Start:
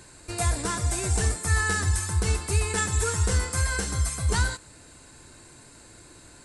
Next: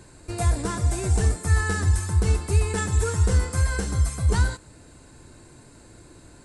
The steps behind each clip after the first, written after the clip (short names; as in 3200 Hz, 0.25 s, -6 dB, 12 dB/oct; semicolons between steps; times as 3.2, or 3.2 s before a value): tilt shelf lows +4.5 dB, about 860 Hz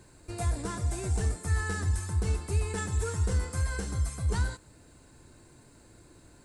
in parallel at -11 dB: hard clip -21 dBFS, distortion -9 dB; on the sum: bit-crush 11-bit; gain -9 dB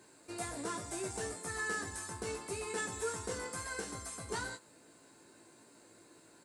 HPF 270 Hz 12 dB/oct; doubler 18 ms -5 dB; gain -2.5 dB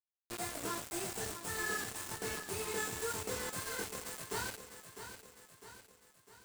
chorus 1.9 Hz, depth 4 ms; bit-crush 7-bit; lo-fi delay 0.653 s, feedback 55%, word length 11-bit, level -10 dB; gain +2 dB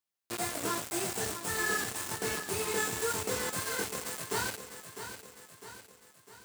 HPF 80 Hz; gain +6 dB